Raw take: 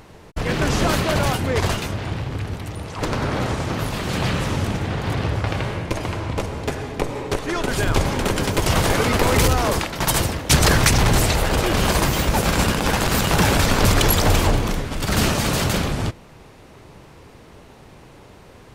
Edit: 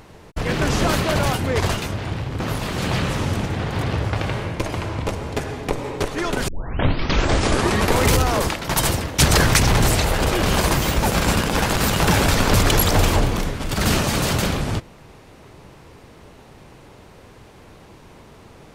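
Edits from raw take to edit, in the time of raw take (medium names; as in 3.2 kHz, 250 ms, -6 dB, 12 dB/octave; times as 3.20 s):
2.40–3.71 s: delete
7.79 s: tape start 1.49 s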